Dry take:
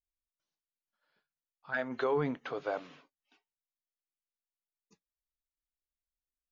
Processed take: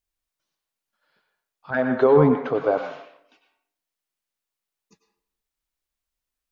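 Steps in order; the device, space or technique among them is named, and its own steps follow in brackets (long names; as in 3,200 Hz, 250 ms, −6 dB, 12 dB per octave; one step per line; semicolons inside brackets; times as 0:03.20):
filtered reverb send (on a send: high-pass filter 580 Hz 12 dB per octave + low-pass filter 4,700 Hz + convolution reverb RT60 0.65 s, pre-delay 89 ms, DRR 4.5 dB)
0:01.70–0:02.78: on the sum: tilt shelving filter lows +8.5 dB, about 1,200 Hz
level +8.5 dB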